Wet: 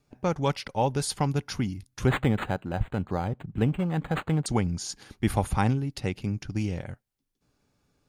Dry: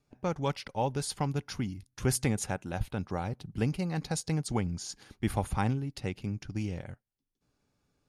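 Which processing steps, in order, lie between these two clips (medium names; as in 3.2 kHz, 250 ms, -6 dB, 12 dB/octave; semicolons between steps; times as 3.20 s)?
2.07–4.46 s: decimation joined by straight lines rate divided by 8×; trim +5 dB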